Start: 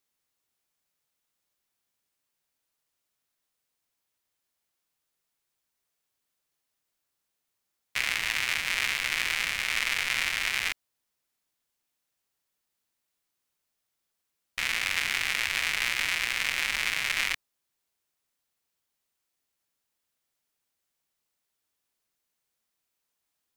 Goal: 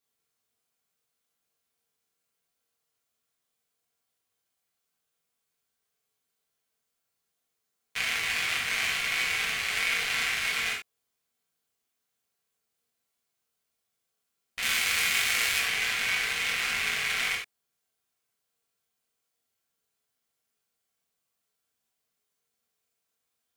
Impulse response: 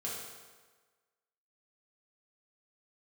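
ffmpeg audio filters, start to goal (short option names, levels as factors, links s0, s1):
-filter_complex "[0:a]asettb=1/sr,asplit=3[s0][s1][s2];[s0]atrim=end=14.624[s3];[s1]atrim=start=14.62:end=15.59,asetpts=PTS-STARTPTS,afade=t=in:d=0.004:c=qsin,afade=t=out:st=0.966:d=0.004:c=qsin,highshelf=f=5400:g=10[s4];[s2]atrim=start=15.586[s5];[s3][s4]acrossfade=d=0.004:c1=hsin:c2=qsin[s6];[s6][s5]acrossfade=d=0.004:c1=qsin:c2=hsin[s7];[1:a]atrim=start_sample=2205,atrim=end_sample=4410[s8];[s7][s8]afir=irnorm=-1:irlink=0"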